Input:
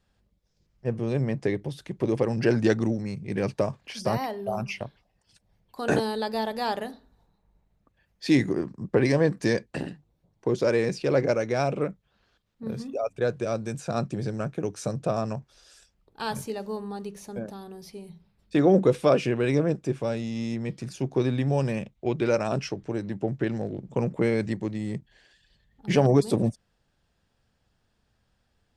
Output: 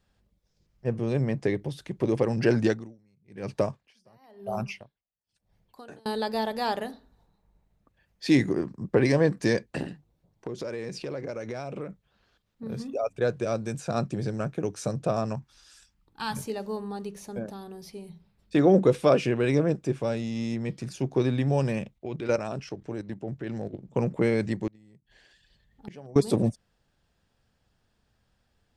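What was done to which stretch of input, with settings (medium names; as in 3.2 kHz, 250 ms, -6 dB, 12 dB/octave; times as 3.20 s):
2.60–6.06 s: logarithmic tremolo 1 Hz, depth 33 dB
9.83–12.71 s: compression, threshold -31 dBFS
15.35–16.37 s: high-order bell 520 Hz -10.5 dB 1.1 oct
21.98–23.96 s: level held to a coarse grid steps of 11 dB
24.67–26.16 s: inverted gate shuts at -24 dBFS, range -25 dB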